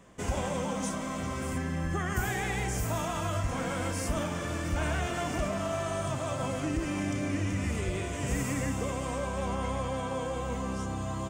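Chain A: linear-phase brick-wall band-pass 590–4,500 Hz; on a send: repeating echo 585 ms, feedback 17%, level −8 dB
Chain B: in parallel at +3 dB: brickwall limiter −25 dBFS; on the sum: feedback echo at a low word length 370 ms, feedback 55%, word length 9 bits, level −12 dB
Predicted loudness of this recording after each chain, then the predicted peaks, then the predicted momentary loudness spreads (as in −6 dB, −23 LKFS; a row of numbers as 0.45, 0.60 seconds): −36.5, −25.5 LKFS; −22.0, −13.0 dBFS; 6, 2 LU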